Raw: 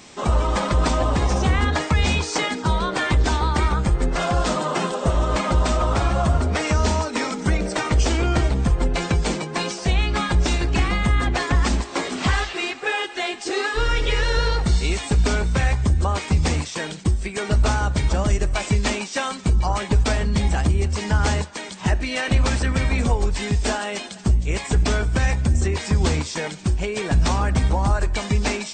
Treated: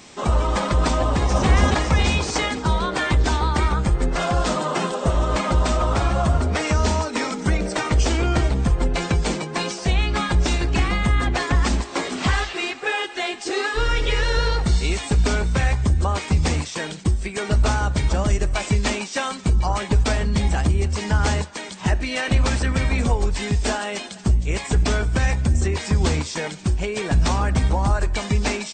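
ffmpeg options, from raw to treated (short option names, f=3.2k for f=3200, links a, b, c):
-filter_complex "[0:a]asplit=2[a][b];[b]afade=t=in:st=1.06:d=0.01,afade=t=out:st=1.46:d=0.01,aecho=0:1:280|560|840|1120|1400|1680|1960|2240|2520:0.944061|0.566437|0.339862|0.203917|0.12235|0.0734102|0.0440461|0.0264277|0.0158566[c];[a][c]amix=inputs=2:normalize=0"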